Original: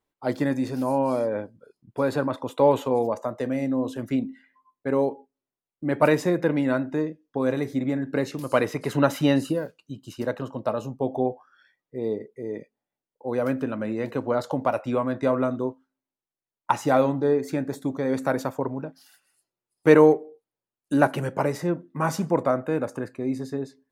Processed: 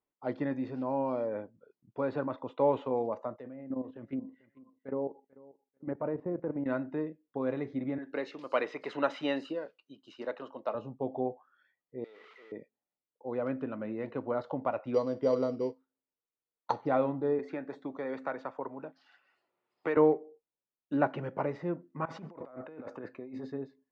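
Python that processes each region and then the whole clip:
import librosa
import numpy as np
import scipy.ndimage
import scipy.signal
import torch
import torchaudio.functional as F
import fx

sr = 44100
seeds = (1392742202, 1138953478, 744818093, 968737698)

y = fx.chain(x, sr, fx.env_lowpass_down(base_hz=910.0, full_db=-20.0),
    fx.level_steps(step_db=12),
    fx.echo_feedback(ms=441, feedback_pct=21, wet_db=-21), at=(3.36, 6.66))
y = fx.chain(y, sr, fx.highpass(hz=340.0, slope=12),
    fx.high_shelf(hz=2900.0, db=11.0), at=(7.98, 10.75))
y = fx.chain(y, sr, fx.zero_step(step_db=-42.5),
    fx.highpass(hz=1500.0, slope=12),
    fx.env_flatten(amount_pct=100), at=(12.04, 12.52))
y = fx.chain(y, sr, fx.env_lowpass_down(base_hz=1100.0, full_db=-23.5),
    fx.peak_eq(hz=470.0, db=13.0, octaves=0.23),
    fx.sample_hold(seeds[0], rate_hz=5200.0, jitter_pct=0), at=(14.94, 16.87))
y = fx.chain(y, sr, fx.highpass(hz=490.0, slope=6),
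    fx.dynamic_eq(hz=1400.0, q=0.96, threshold_db=-40.0, ratio=4.0, max_db=3),
    fx.band_squash(depth_pct=70), at=(17.39, 19.97))
y = fx.chain(y, sr, fx.highpass(hz=270.0, slope=6),
    fx.over_compress(threshold_db=-36.0, ratio=-1.0), at=(22.05, 23.52))
y = scipy.signal.sosfilt(scipy.signal.bessel(4, 2400.0, 'lowpass', norm='mag', fs=sr, output='sos'), y)
y = fx.low_shelf(y, sr, hz=94.0, db=-9.0)
y = fx.notch(y, sr, hz=1600.0, q=18.0)
y = F.gain(torch.from_numpy(y), -7.5).numpy()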